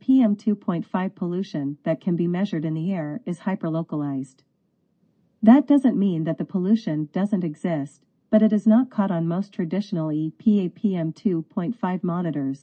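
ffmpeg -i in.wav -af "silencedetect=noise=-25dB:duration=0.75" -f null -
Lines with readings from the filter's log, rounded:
silence_start: 4.22
silence_end: 5.43 | silence_duration: 1.21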